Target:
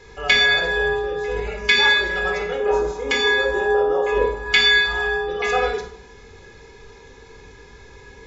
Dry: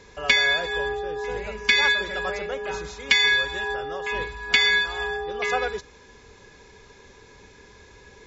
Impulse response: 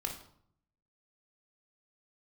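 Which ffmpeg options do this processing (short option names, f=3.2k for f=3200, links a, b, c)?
-filter_complex "[0:a]asettb=1/sr,asplit=3[a][b][c];[a]atrim=end=2.604[d];[b]atrim=start=2.6:end=4.46,asetpts=PTS-STARTPTS,afade=t=in:d=0.004:c=qsin,afade=t=out:st=1.856:d=0.004:c=qsin,equalizer=f=125:t=o:w=1:g=-9,equalizer=f=250:t=o:w=1:g=5,equalizer=f=500:t=o:w=1:g=9,equalizer=f=1k:t=o:w=1:g=4,equalizer=f=2k:t=o:w=1:g=-6,equalizer=f=4k:t=o:w=1:g=-7[e];[c]atrim=start=4.456[f];[d][e]acrossfade=d=0.004:c1=hsin:c2=qsin[g];[g][f]acrossfade=d=0.004:c1=qsin:c2=hsin[h];[1:a]atrim=start_sample=2205[i];[h][i]afir=irnorm=-1:irlink=0,volume=2dB"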